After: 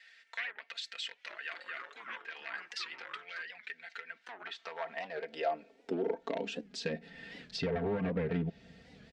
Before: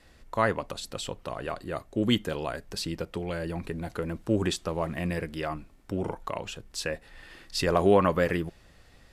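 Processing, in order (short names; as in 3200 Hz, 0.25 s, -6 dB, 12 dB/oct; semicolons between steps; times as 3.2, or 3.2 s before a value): one-sided fold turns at -22 dBFS; treble ducked by the level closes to 1800 Hz, closed at -23.5 dBFS; bell 1100 Hz -14 dB 0.59 oct; comb 4.4 ms, depth 89%; compressor 2.5:1, threshold -35 dBFS, peak gain reduction 12.5 dB; high-pass sweep 1800 Hz -> 120 Hz, 3.98–7.49; 1.06–3.42 echoes that change speed 0.212 s, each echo -4 st, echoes 3, each echo -6 dB; air absorption 130 m; record warp 78 rpm, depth 160 cents; gain +1 dB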